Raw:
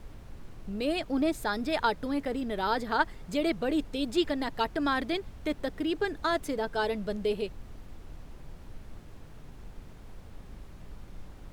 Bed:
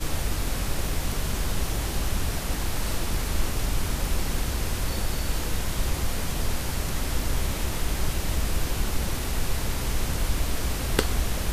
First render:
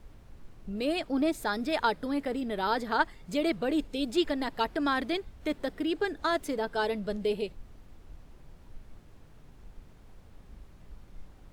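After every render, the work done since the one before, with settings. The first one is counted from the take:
noise reduction from a noise print 6 dB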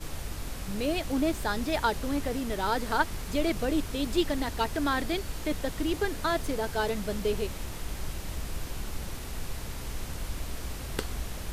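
mix in bed −9.5 dB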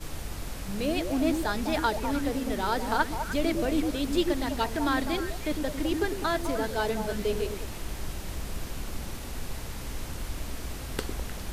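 echo through a band-pass that steps 102 ms, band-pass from 270 Hz, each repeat 1.4 octaves, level −2 dB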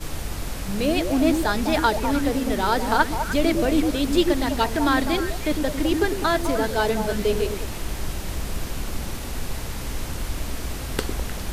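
level +6.5 dB

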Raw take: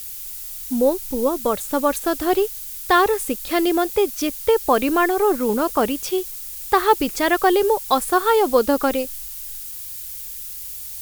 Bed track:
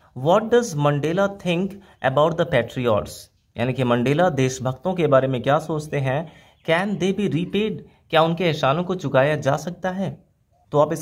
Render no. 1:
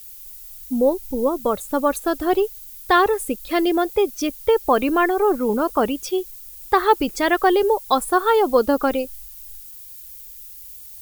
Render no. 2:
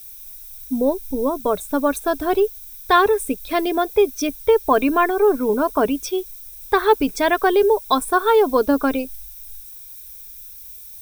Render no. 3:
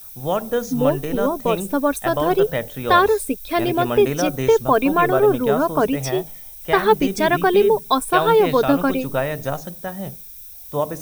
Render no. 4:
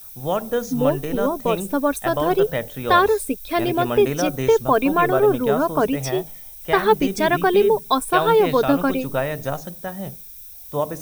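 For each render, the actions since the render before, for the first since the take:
broadband denoise 10 dB, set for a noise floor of −33 dBFS
EQ curve with evenly spaced ripples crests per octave 1.6, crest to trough 8 dB
mix in bed track −5 dB
level −1 dB

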